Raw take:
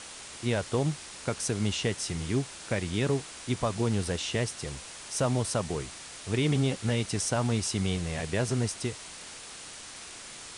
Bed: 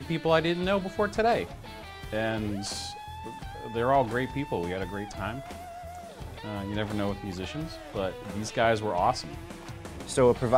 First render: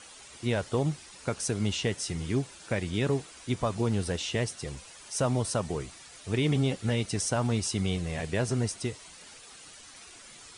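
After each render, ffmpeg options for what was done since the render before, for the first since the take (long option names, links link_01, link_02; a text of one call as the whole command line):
ffmpeg -i in.wav -af "afftdn=noise_reduction=10:noise_floor=-45" out.wav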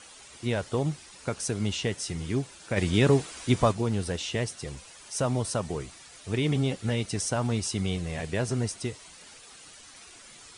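ffmpeg -i in.wav -filter_complex "[0:a]asplit=3[link_01][link_02][link_03];[link_01]afade=type=out:start_time=2.76:duration=0.02[link_04];[link_02]acontrast=74,afade=type=in:start_time=2.76:duration=0.02,afade=type=out:start_time=3.71:duration=0.02[link_05];[link_03]afade=type=in:start_time=3.71:duration=0.02[link_06];[link_04][link_05][link_06]amix=inputs=3:normalize=0" out.wav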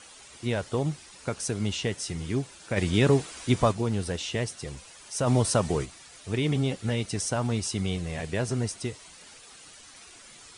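ffmpeg -i in.wav -filter_complex "[0:a]asplit=3[link_01][link_02][link_03];[link_01]afade=type=out:start_time=5.26:duration=0.02[link_04];[link_02]acontrast=42,afade=type=in:start_time=5.26:duration=0.02,afade=type=out:start_time=5.84:duration=0.02[link_05];[link_03]afade=type=in:start_time=5.84:duration=0.02[link_06];[link_04][link_05][link_06]amix=inputs=3:normalize=0" out.wav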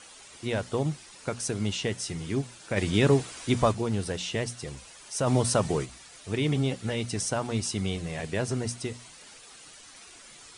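ffmpeg -i in.wav -af "equalizer=frequency=80:width=6.5:gain=-7,bandreject=frequency=60:width_type=h:width=6,bandreject=frequency=120:width_type=h:width=6,bandreject=frequency=180:width_type=h:width=6,bandreject=frequency=240:width_type=h:width=6" out.wav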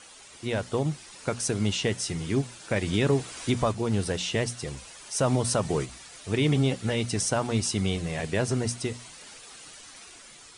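ffmpeg -i in.wav -af "alimiter=limit=-16.5dB:level=0:latency=1:release=315,dynaudnorm=framelen=240:gausssize=7:maxgain=3dB" out.wav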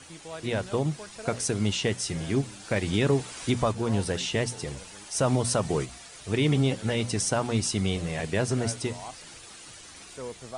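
ffmpeg -i in.wav -i bed.wav -filter_complex "[1:a]volume=-17dB[link_01];[0:a][link_01]amix=inputs=2:normalize=0" out.wav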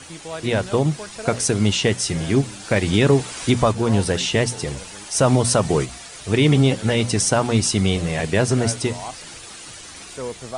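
ffmpeg -i in.wav -af "volume=8dB" out.wav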